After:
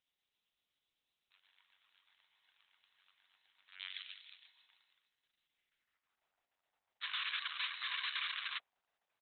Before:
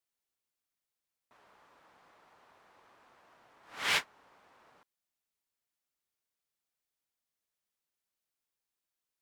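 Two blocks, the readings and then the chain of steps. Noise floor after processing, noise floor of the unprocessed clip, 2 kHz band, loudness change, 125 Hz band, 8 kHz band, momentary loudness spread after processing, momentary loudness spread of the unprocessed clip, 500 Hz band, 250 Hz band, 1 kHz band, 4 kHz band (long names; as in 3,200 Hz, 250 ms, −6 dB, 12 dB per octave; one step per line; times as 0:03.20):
below −85 dBFS, below −85 dBFS, −3.0 dB, −8.5 dB, below −30 dB, below −30 dB, 14 LU, 4 LU, below −25 dB, below −25 dB, −4.5 dB, +0.5 dB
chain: hum removal 289.3 Hz, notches 36
downward compressor 12 to 1, threshold −42 dBFS, peak gain reduction 17.5 dB
high-pass filter sweep 3,700 Hz → 690 Hz, 0:05.37–0:06.25
phases set to zero 94.1 Hz
rotating-speaker cabinet horn 8 Hz
high-frequency loss of the air 390 metres
echo with shifted repeats 158 ms, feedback 52%, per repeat +66 Hz, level −3 dB
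sound drawn into the spectrogram noise, 0:07.01–0:08.59, 990–4,400 Hz −53 dBFS
level +13.5 dB
Opus 6 kbit/s 48,000 Hz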